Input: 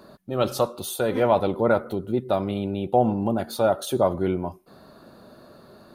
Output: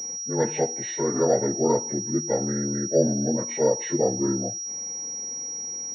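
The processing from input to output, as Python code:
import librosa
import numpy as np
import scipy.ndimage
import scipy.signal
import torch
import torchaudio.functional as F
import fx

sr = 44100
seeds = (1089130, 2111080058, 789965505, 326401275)

y = fx.partial_stretch(x, sr, pct=76)
y = fx.pwm(y, sr, carrier_hz=5700.0)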